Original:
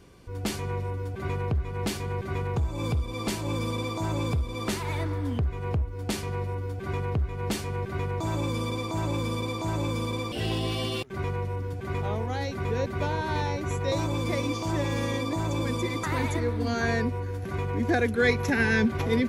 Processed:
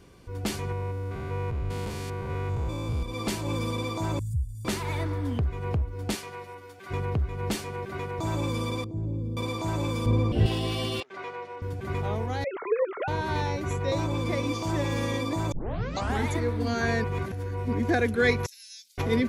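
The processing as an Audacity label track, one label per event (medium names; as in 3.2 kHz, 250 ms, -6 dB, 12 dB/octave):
0.720000	3.030000	spectrogram pixelated in time every 200 ms
4.190000	4.650000	Chebyshev band-stop 120–8100 Hz, order 3
6.140000	6.900000	high-pass 700 Hz -> 1.5 kHz 6 dB/octave
7.550000	8.190000	bass shelf 130 Hz -11.5 dB
8.840000	9.370000	FFT filter 130 Hz 0 dB, 420 Hz -6 dB, 1.2 kHz -29 dB
10.060000	10.460000	tilt EQ -3.5 dB/octave
11.000000	11.620000	band-pass 520–5100 Hz
12.440000	13.080000	formants replaced by sine waves
13.730000	14.470000	treble shelf 5.6 kHz -6 dB
15.520000	15.520000	tape start 0.77 s
17.040000	17.730000	reverse
18.460000	18.980000	inverse Chebyshev high-pass stop band from 1.1 kHz, stop band 70 dB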